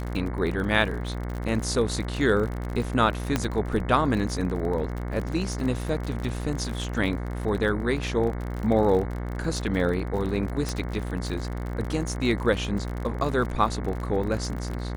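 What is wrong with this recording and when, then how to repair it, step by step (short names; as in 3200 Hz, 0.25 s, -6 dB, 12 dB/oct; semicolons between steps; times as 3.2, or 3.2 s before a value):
buzz 60 Hz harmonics 37 -31 dBFS
crackle 43/s -31 dBFS
3.36 pop -9 dBFS
10.69 pop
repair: de-click; de-hum 60 Hz, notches 37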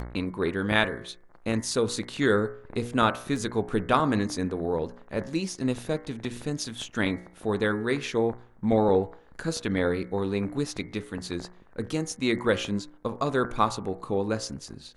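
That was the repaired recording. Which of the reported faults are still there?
3.36 pop
10.69 pop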